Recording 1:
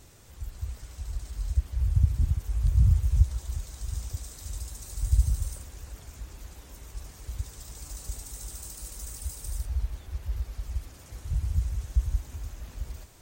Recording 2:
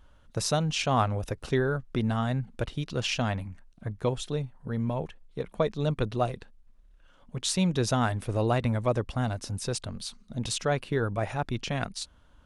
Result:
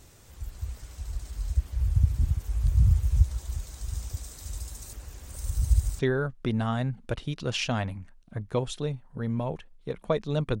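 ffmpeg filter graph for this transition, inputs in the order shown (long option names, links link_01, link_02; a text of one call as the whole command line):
ffmpeg -i cue0.wav -i cue1.wav -filter_complex "[0:a]apad=whole_dur=10.6,atrim=end=10.6,asplit=2[link_01][link_02];[link_01]atrim=end=4.932[link_03];[link_02]atrim=start=4.928:end=5.992,asetpts=PTS-STARTPTS,areverse[link_04];[1:a]atrim=start=1.488:end=6.1[link_05];[link_03][link_04]acrossfade=duration=0.004:curve1=hsin:curve2=hsin[link_06];[link_06][link_05]acrossfade=duration=0.004:curve1=hsin:curve2=hsin" out.wav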